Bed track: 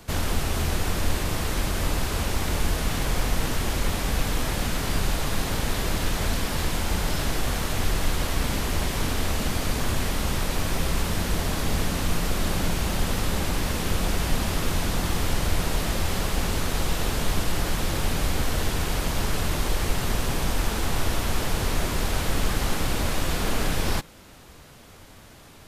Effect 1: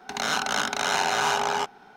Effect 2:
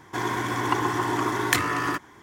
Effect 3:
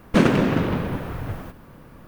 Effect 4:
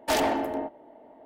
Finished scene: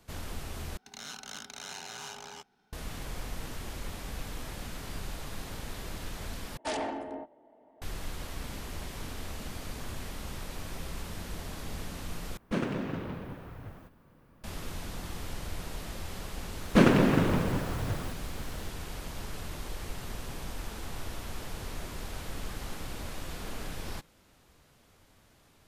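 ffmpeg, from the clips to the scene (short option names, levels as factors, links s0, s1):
-filter_complex "[3:a]asplit=2[s0][s1];[0:a]volume=0.2[s2];[1:a]equalizer=f=840:w=0.34:g=-12.5[s3];[4:a]aresample=22050,aresample=44100[s4];[s2]asplit=4[s5][s6][s7][s8];[s5]atrim=end=0.774[s9];[s3]atrim=end=1.96,asetpts=PTS-STARTPTS,volume=0.299[s10];[s6]atrim=start=2.726:end=6.574[s11];[s4]atrim=end=1.25,asetpts=PTS-STARTPTS,volume=0.355[s12];[s7]atrim=start=7.816:end=12.374[s13];[s0]atrim=end=2.07,asetpts=PTS-STARTPTS,volume=0.188[s14];[s8]atrim=start=14.436[s15];[s1]atrim=end=2.07,asetpts=PTS-STARTPTS,volume=0.668,afade=t=in:d=0.004:c=hsin,afade=t=out:st=2.066:d=0.004:c=hsin,adelay=16610[s16];[s9][s10]acrossfade=d=0.004:c1=hsin:c2=hsin[s17];[s17][s11]acrossfade=d=0.004:c1=hsin:c2=hsin[s18];[s18][s12]acrossfade=d=0.004:c1=hsin:c2=hsin[s19];[s19][s13]acrossfade=d=0.004:c1=hsin:c2=hsin[s20];[s20][s14]acrossfade=d=0.004:c1=hsin:c2=hsin[s21];[s21][s15]acrossfade=d=0.004:c1=hsin:c2=hsin[s22];[s22][s16]amix=inputs=2:normalize=0"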